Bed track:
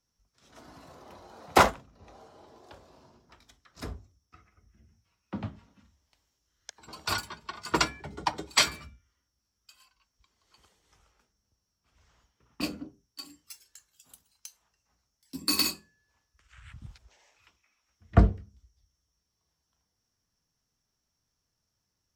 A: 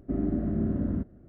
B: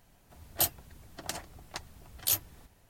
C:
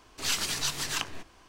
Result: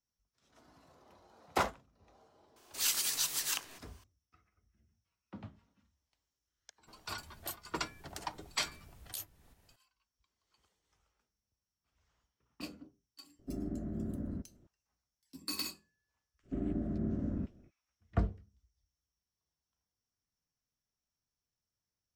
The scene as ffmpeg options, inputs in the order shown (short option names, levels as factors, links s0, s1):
-filter_complex "[1:a]asplit=2[s0][s1];[0:a]volume=0.251[s2];[3:a]aemphasis=mode=production:type=bsi[s3];[2:a]acompressor=threshold=0.0158:ratio=3:attack=9.3:release=419:knee=1:detection=rms[s4];[s3]atrim=end=1.48,asetpts=PTS-STARTPTS,volume=0.355,afade=t=in:d=0.004:c=hsin,afade=t=out:st=1.476:d=0.004:c=hsin,adelay=2560[s5];[s4]atrim=end=2.89,asetpts=PTS-STARTPTS,volume=0.562,afade=t=in:d=0.004:c=hsin,afade=t=out:st=2.886:d=0.004:c=hsin,adelay=6870[s6];[s0]atrim=end=1.28,asetpts=PTS-STARTPTS,volume=0.282,afade=t=in:d=0.004:c=hsin,afade=t=out:st=1.276:d=0.004:c=hsin,adelay=13390[s7];[s1]atrim=end=1.28,asetpts=PTS-STARTPTS,volume=0.422,afade=t=in:d=0.05,afade=t=out:st=1.23:d=0.05,adelay=16430[s8];[s2][s5][s6][s7][s8]amix=inputs=5:normalize=0"